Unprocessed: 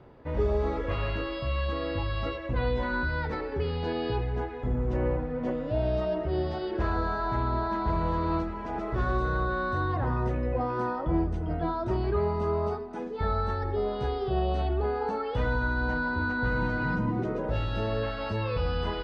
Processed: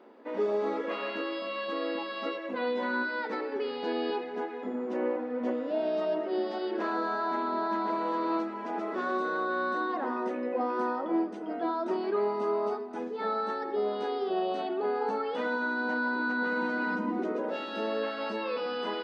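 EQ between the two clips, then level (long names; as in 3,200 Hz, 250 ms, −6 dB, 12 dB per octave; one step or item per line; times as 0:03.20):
linear-phase brick-wall high-pass 200 Hz
0.0 dB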